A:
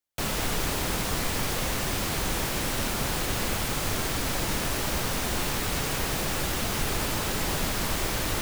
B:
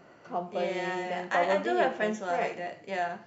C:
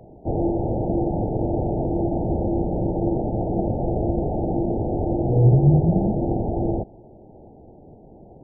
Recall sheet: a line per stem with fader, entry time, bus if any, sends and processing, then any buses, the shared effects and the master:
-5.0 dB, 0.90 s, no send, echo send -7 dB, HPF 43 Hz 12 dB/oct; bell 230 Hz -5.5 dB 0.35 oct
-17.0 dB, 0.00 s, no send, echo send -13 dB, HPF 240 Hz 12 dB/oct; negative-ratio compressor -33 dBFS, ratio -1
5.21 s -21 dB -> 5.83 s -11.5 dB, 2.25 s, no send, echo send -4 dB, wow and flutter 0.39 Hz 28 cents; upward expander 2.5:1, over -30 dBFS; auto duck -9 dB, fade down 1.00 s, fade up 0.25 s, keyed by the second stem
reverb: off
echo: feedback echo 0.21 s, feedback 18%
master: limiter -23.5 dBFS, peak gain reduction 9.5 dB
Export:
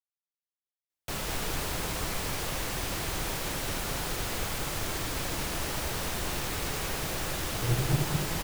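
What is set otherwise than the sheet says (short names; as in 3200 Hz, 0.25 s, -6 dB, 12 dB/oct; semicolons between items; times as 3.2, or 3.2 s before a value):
stem A: missing HPF 43 Hz 12 dB/oct; stem B: muted; master: missing limiter -23.5 dBFS, peak gain reduction 9.5 dB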